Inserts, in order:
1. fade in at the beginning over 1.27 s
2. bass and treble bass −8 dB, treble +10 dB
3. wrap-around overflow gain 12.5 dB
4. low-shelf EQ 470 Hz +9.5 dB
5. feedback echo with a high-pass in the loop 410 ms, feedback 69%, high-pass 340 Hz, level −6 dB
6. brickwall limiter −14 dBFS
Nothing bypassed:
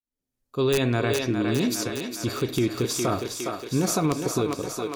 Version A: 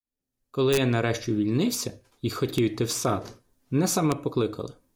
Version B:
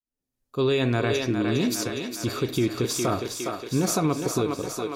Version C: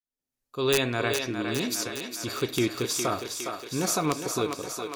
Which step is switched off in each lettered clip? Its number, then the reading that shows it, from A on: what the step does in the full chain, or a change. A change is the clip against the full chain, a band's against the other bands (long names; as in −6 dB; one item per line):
5, change in momentary loudness spread +4 LU
3, distortion level −15 dB
4, 125 Hz band −7.0 dB